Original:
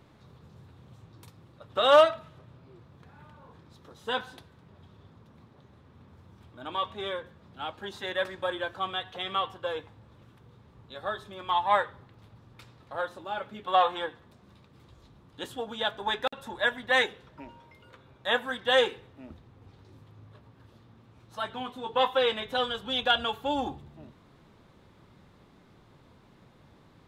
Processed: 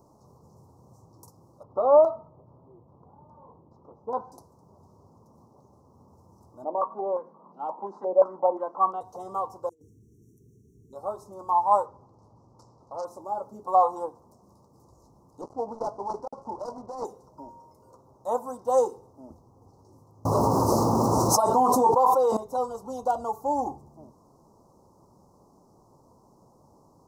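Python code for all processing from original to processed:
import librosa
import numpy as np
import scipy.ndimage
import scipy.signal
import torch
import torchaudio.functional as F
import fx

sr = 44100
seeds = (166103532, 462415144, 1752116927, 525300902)

y = fx.chain(x, sr, fx.high_shelf(hz=7600.0, db=-11.0),
    fx.filter_lfo_lowpass(shape='saw_down', hz=2.4, low_hz=700.0, high_hz=2800.0, q=0.72), at=(1.63, 4.32))
y = fx.chain(y, sr, fx.steep_highpass(hz=160.0, slope=72),
    fx.filter_held_lowpass(hz=5.7, low_hz=630.0, high_hz=2500.0), at=(6.64, 9.01))
y = fx.chain(y, sr, fx.brickwall_bandstop(low_hz=460.0, high_hz=5500.0),
    fx.over_compress(threshold_db=-52.0, ratio=-0.5), at=(9.69, 10.93))
y = fx.chain(y, sr, fx.lowpass(hz=5900.0, slope=12),
    fx.transformer_sat(knee_hz=2000.0), at=(11.86, 13.05))
y = fx.chain(y, sr, fx.dead_time(dead_ms=0.18),
    fx.lowpass(hz=2500.0, slope=12),
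    fx.over_compress(threshold_db=-31.0, ratio=-0.5), at=(15.41, 17.05))
y = fx.chain(y, sr, fx.low_shelf(hz=140.0, db=-11.0),
    fx.env_flatten(amount_pct=100), at=(20.25, 22.37))
y = scipy.signal.sosfilt(scipy.signal.ellip(3, 1.0, 40, [1000.0, 5600.0], 'bandstop', fs=sr, output='sos'), y)
y = fx.low_shelf(y, sr, hz=290.0, db=-11.5)
y = y * librosa.db_to_amplitude(6.0)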